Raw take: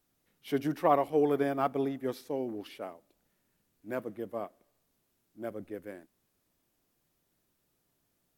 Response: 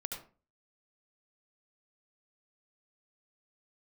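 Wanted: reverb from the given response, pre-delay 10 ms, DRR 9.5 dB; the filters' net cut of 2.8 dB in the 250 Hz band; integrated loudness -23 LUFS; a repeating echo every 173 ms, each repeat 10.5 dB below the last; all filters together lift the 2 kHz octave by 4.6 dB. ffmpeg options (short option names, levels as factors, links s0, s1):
-filter_complex "[0:a]equalizer=f=250:t=o:g=-3.5,equalizer=f=2000:t=o:g=6,aecho=1:1:173|346|519:0.299|0.0896|0.0269,asplit=2[s0][s1];[1:a]atrim=start_sample=2205,adelay=10[s2];[s1][s2]afir=irnorm=-1:irlink=0,volume=0.335[s3];[s0][s3]amix=inputs=2:normalize=0,volume=2.99"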